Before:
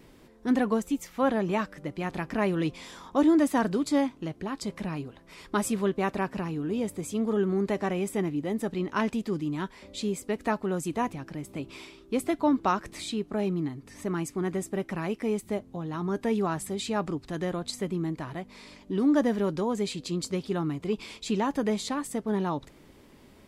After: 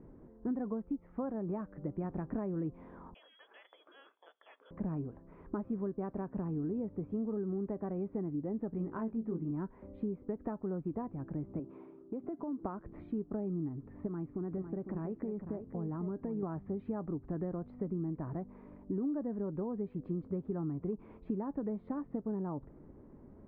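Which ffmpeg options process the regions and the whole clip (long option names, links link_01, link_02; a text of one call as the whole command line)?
ffmpeg -i in.wav -filter_complex "[0:a]asettb=1/sr,asplit=3[link_01][link_02][link_03];[link_01]atrim=end=3.144[link_04];[link_02]atrim=start=3.14:end=4.71,asetpts=PTS-STARTPTS,afade=type=in:duration=0.004:curve=qsin,afade=type=out:start_time=1.566:duration=0.004:curve=qsin,lowpass=frequency=3100:width_type=q:width=0.5098,lowpass=frequency=3100:width_type=q:width=0.6013,lowpass=frequency=3100:width_type=q:width=0.9,lowpass=frequency=3100:width_type=q:width=2.563,afreqshift=-3600,acompressor=threshold=-25dB:ratio=5:attack=3.2:release=140:knee=1:detection=peak,highpass=frequency=330:width=0.5412,highpass=frequency=330:width=1.3066[link_05];[link_03]atrim=start=4.706[link_06];[link_04][link_05]acrossfade=duration=0.004:curve1=hsin:curve2=qsin[link_07];[link_07][link_06]acrossfade=duration=0.004:curve1=qsin:curve2=hsin,asettb=1/sr,asplit=3[link_08][link_09][link_10];[link_08]atrim=end=8.704[link_11];[link_09]atrim=start=8.7:end=9.51,asetpts=PTS-STARTPTS,afade=type=in:duration=0.004:curve=qsin,afade=type=out:start_time=0.806:duration=0.004:curve=qsin,asplit=2[link_12][link_13];[link_13]adelay=18,volume=-5.5dB[link_14];[link_12][link_14]amix=inputs=2:normalize=0,atrim=end_sample=35721,bandreject=frequency=52.81:width_type=h:width=4,bandreject=frequency=105.62:width_type=h:width=4,bandreject=frequency=158.43:width_type=h:width=4,bandreject=frequency=211.24:width_type=h:width=4,bandreject=frequency=264.05:width_type=h:width=4,bandreject=frequency=316.86:width_type=h:width=4,bandreject=frequency=369.67:width_type=h:width=4,bandreject=frequency=422.48:width_type=h:width=4,bandreject=frequency=475.29:width_type=h:width=4,bandreject=frequency=528.1:width_type=h:width=4,bandreject=frequency=580.91:width_type=h:width=4[link_15];[link_10]atrim=start=9.506[link_16];[link_11][link_15]acrossfade=duration=0.004:curve1=hsin:curve2=qsin[link_17];[link_17][link_16]acrossfade=duration=0.004:curve1=qsin:curve2=hsin,asettb=1/sr,asplit=3[link_18][link_19][link_20];[link_18]atrim=end=11.594[link_21];[link_19]atrim=start=11.59:end=12.63,asetpts=PTS-STARTPTS,afade=type=in:duration=0.004:curve=qsin,afade=type=out:start_time=1.036:duration=0.004:curve=qsin,highpass=180,lowpass=6100,equalizer=frequency=1900:width=0.84:gain=-3.5,acompressor=threshold=-34dB:ratio=5:attack=3.2:release=140:knee=1:detection=peak[link_22];[link_20]atrim=start=12.626[link_23];[link_21][link_22]acrossfade=duration=0.004:curve1=hsin:curve2=qsin[link_24];[link_24][link_23]acrossfade=duration=0.004:curve1=qsin:curve2=hsin,asettb=1/sr,asplit=3[link_25][link_26][link_27];[link_25]atrim=end=14.074[link_28];[link_26]atrim=start=14.07:end=16.43,asetpts=PTS-STARTPTS,afade=type=in:duration=0.004:curve=qsin,afade=type=out:start_time=2.356:duration=0.004:curve=qsin,acompressor=threshold=-33dB:ratio=3:attack=3.2:release=140:knee=1:detection=peak,aecho=1:1:504:0.355,atrim=end_sample=104076[link_29];[link_27]atrim=start=16.426[link_30];[link_28][link_29]acrossfade=duration=0.004:curve1=hsin:curve2=qsin[link_31];[link_31][link_30]acrossfade=duration=0.004:curve1=qsin:curve2=hsin,lowpass=frequency=1600:width=0.5412,lowpass=frequency=1600:width=1.3066,acompressor=threshold=-33dB:ratio=6,tiltshelf=frequency=970:gain=8.5,volume=-7dB" out.wav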